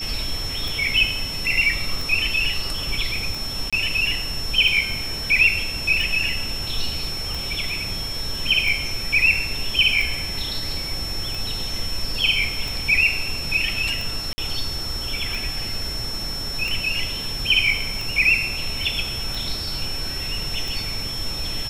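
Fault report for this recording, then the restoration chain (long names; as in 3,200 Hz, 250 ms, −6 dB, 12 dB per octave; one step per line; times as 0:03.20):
scratch tick 45 rpm
whistle 5,400 Hz −28 dBFS
0:03.70–0:03.73: drop-out 26 ms
0:14.33–0:14.38: drop-out 50 ms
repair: click removal
notch filter 5,400 Hz, Q 30
repair the gap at 0:03.70, 26 ms
repair the gap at 0:14.33, 50 ms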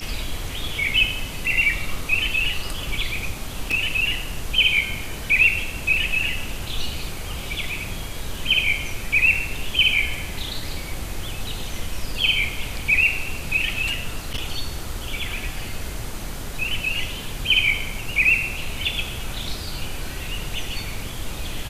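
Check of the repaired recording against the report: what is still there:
none of them is left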